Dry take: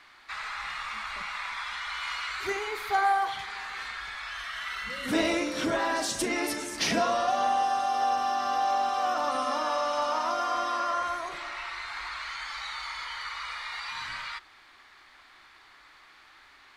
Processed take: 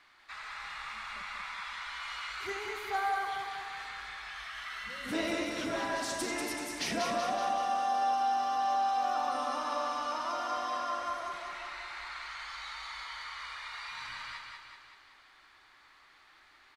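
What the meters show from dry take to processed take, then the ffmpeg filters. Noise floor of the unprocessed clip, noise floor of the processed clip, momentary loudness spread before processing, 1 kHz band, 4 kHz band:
-56 dBFS, -61 dBFS, 10 LU, -4.0 dB, -5.5 dB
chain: -af "aecho=1:1:190|380|570|760|950|1140|1330|1520:0.631|0.353|0.198|0.111|0.0621|0.0347|0.0195|0.0109,volume=-7.5dB"

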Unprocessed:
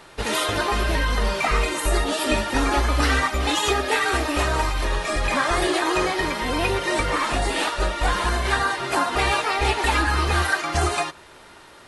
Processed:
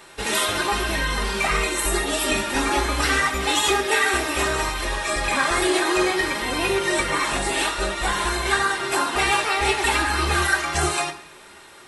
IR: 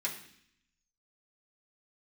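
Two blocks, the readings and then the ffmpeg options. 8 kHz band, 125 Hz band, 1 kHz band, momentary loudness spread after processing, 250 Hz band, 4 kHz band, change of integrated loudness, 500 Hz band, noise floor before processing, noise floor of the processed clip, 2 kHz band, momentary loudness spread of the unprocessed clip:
+5.0 dB, -5.0 dB, -0.5 dB, 4 LU, -0.5 dB, +2.0 dB, +1.0 dB, 0.0 dB, -47 dBFS, -46 dBFS, +2.0 dB, 3 LU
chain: -filter_complex "[0:a]asplit=2[a][b];[1:a]atrim=start_sample=2205,highshelf=f=7.3k:g=10[c];[b][c]afir=irnorm=-1:irlink=0,volume=-4.5dB[d];[a][d]amix=inputs=2:normalize=0,volume=-2dB"

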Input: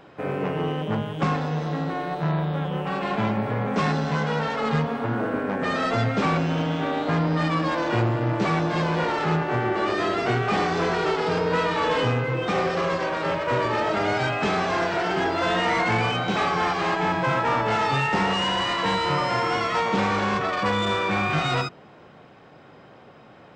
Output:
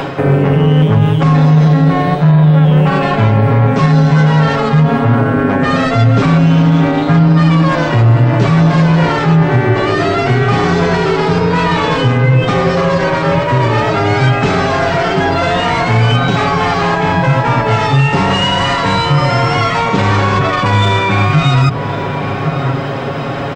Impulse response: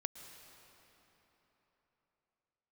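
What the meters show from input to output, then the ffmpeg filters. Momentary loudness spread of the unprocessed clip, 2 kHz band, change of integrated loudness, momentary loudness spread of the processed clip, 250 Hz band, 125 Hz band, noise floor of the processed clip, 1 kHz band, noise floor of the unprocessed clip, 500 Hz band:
4 LU, +9.5 dB, +12.5 dB, 4 LU, +14.0 dB, +18.5 dB, -18 dBFS, +9.5 dB, -49 dBFS, +10.5 dB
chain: -filter_complex "[0:a]aecho=1:1:7.3:0.6,asplit=2[a][b];[b]adelay=1108,volume=-24dB,highshelf=f=4k:g=-24.9[c];[a][c]amix=inputs=2:normalize=0,areverse,acompressor=threshold=-33dB:ratio=6,areverse,bandreject=f=60:t=h:w=6,bandreject=f=120:t=h:w=6,bandreject=f=180:t=h:w=6,acrossover=split=170[d][e];[e]acompressor=threshold=-55dB:ratio=2[f];[d][f]amix=inputs=2:normalize=0,alimiter=level_in=34dB:limit=-1dB:release=50:level=0:latency=1,volume=-1dB"

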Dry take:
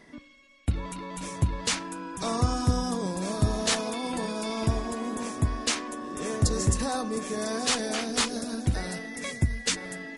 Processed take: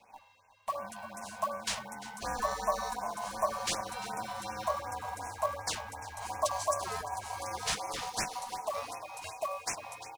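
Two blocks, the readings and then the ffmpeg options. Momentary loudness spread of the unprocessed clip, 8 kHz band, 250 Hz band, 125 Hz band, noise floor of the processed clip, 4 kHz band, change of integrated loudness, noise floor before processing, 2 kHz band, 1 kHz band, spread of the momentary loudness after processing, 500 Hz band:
8 LU, -7.0 dB, -20.0 dB, -22.0 dB, -61 dBFS, -8.5 dB, -7.0 dB, -54 dBFS, -6.0 dB, +0.5 dB, 9 LU, -4.5 dB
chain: -filter_complex "[0:a]afreqshift=-340,acrusher=bits=5:mode=log:mix=0:aa=0.000001,aeval=exprs='val(0)*sin(2*PI*860*n/s)':c=same,asplit=2[a][b];[b]aecho=0:1:347:0.168[c];[a][c]amix=inputs=2:normalize=0,afftfilt=real='re*(1-between(b*sr/1024,280*pow(3900/280,0.5+0.5*sin(2*PI*2.7*pts/sr))/1.41,280*pow(3900/280,0.5+0.5*sin(2*PI*2.7*pts/sr))*1.41))':imag='im*(1-between(b*sr/1024,280*pow(3900/280,0.5+0.5*sin(2*PI*2.7*pts/sr))/1.41,280*pow(3900/280,0.5+0.5*sin(2*PI*2.7*pts/sr))*1.41))':win_size=1024:overlap=0.75,volume=-4dB"

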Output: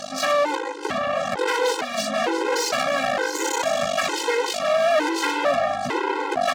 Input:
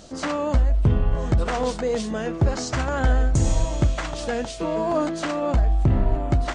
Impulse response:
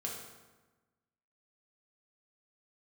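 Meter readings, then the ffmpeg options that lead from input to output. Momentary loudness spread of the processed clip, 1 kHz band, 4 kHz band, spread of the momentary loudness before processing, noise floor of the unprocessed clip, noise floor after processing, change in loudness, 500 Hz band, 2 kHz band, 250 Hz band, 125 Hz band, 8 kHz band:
4 LU, +6.5 dB, +9.0 dB, 6 LU, -33 dBFS, -30 dBFS, +1.0 dB, +4.5 dB, +8.5 dB, -4.0 dB, -23.0 dB, +6.5 dB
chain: -filter_complex "[0:a]aeval=exprs='val(0)+0.0178*(sin(2*PI*50*n/s)+sin(2*PI*2*50*n/s)/2+sin(2*PI*3*50*n/s)/3+sin(2*PI*4*50*n/s)/4+sin(2*PI*5*50*n/s)/5)':c=same,aeval=exprs='max(val(0),0)':c=same,asplit=2[a][b];[b]aecho=0:1:665:0.224[c];[a][c]amix=inputs=2:normalize=0,asplit=2[d][e];[e]highpass=f=720:p=1,volume=30dB,asoftclip=type=tanh:threshold=-8.5dB[f];[d][f]amix=inputs=2:normalize=0,lowpass=f=4.1k:p=1,volume=-6dB,highpass=330,afftfilt=real='re*gt(sin(2*PI*1.1*pts/sr)*(1-2*mod(floor(b*sr/1024/270),2)),0)':imag='im*gt(sin(2*PI*1.1*pts/sr)*(1-2*mod(floor(b*sr/1024/270),2)),0)':win_size=1024:overlap=0.75"

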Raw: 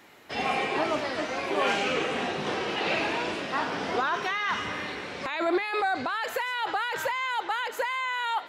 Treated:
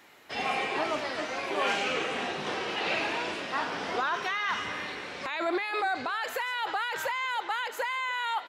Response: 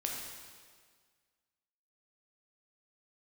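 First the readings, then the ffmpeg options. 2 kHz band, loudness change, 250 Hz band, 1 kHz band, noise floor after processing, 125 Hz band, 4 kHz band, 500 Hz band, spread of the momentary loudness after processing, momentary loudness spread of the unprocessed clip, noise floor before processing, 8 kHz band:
-1.5 dB, -2.0 dB, -5.0 dB, -2.0 dB, -42 dBFS, -6.0 dB, -1.0 dB, -3.5 dB, 4 LU, 4 LU, -40 dBFS, -1.0 dB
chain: -filter_complex "[0:a]lowshelf=f=500:g=-5.5,asplit=2[a][b];[b]adelay=297.4,volume=-20dB,highshelf=f=4k:g=-6.69[c];[a][c]amix=inputs=2:normalize=0,volume=-1dB"

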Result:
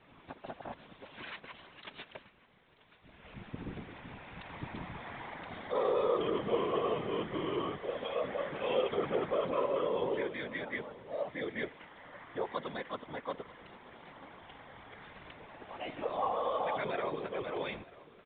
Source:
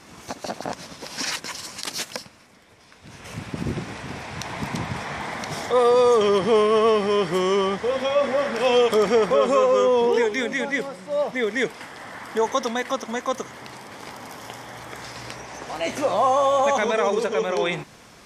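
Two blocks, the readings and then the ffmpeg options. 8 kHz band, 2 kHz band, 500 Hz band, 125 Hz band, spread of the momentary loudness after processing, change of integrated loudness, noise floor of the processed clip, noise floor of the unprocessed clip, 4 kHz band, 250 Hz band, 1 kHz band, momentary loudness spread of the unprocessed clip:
under -40 dB, -14.0 dB, -14.5 dB, -12.0 dB, 20 LU, -14.0 dB, -60 dBFS, -49 dBFS, -15.5 dB, -12.0 dB, -13.5 dB, 19 LU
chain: -af "afftfilt=real='hypot(re,im)*cos(2*PI*random(0))':imag='hypot(re,im)*sin(2*PI*random(1))':win_size=512:overlap=0.75,aecho=1:1:937:0.0944,volume=-8dB" -ar 8000 -c:a pcm_mulaw

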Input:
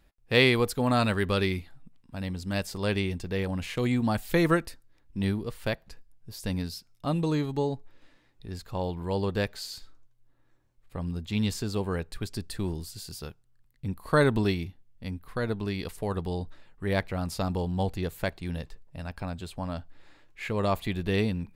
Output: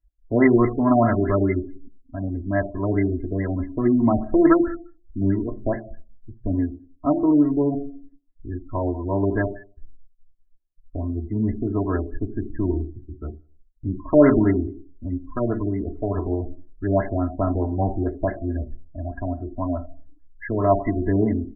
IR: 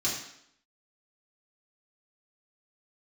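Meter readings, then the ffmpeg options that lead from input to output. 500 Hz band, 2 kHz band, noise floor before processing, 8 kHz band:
+7.0 dB, -2.0 dB, -63 dBFS, under -35 dB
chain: -filter_complex "[0:a]aecho=1:1:3:0.92,asplit=2[a][b];[1:a]atrim=start_sample=2205[c];[b][c]afir=irnorm=-1:irlink=0,volume=-12.5dB[d];[a][d]amix=inputs=2:normalize=0,afftdn=nr=34:nf=-37,adynamicequalizer=threshold=0.002:dfrequency=8500:dqfactor=1.5:tfrequency=8500:tqfactor=1.5:attack=5:release=100:ratio=0.375:range=3.5:mode=cutabove:tftype=bell,asplit=2[e][f];[f]adelay=88,lowpass=f=840:p=1,volume=-24dB,asplit=2[g][h];[h]adelay=88,lowpass=f=840:p=1,volume=0.48,asplit=2[i][j];[j]adelay=88,lowpass=f=840:p=1,volume=0.48[k];[e][g][i][k]amix=inputs=4:normalize=0,afftfilt=real='re*lt(b*sr/1024,820*pow(2200/820,0.5+0.5*sin(2*PI*4.7*pts/sr)))':imag='im*lt(b*sr/1024,820*pow(2200/820,0.5+0.5*sin(2*PI*4.7*pts/sr)))':win_size=1024:overlap=0.75,volume=4dB"

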